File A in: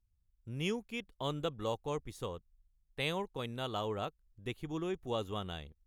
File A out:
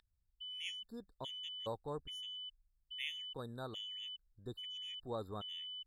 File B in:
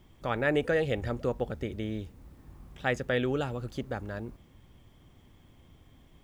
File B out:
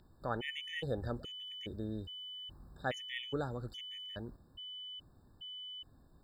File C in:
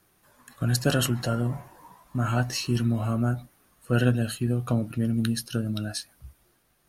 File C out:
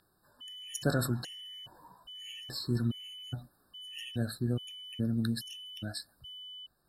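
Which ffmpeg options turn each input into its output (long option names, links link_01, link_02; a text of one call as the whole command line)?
ffmpeg -i in.wav -af "aeval=exprs='val(0)+0.0126*sin(2*PI*3000*n/s)':channel_layout=same,afftfilt=real='re*gt(sin(2*PI*1.2*pts/sr)*(1-2*mod(floor(b*sr/1024/1800),2)),0)':imag='im*gt(sin(2*PI*1.2*pts/sr)*(1-2*mod(floor(b*sr/1024/1800),2)),0)':win_size=1024:overlap=0.75,volume=-5.5dB" out.wav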